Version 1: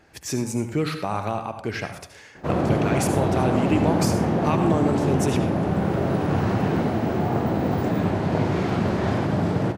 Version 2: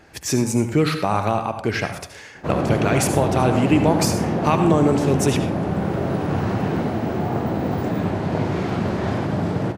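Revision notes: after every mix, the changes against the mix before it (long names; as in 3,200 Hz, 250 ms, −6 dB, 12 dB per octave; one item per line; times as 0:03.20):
speech +6.0 dB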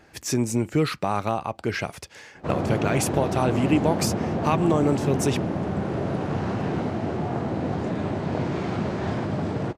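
background: add low-pass filter 9,300 Hz 24 dB per octave
reverb: off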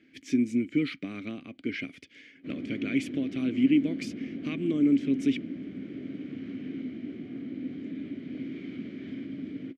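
speech +6.5 dB
master: add formant filter i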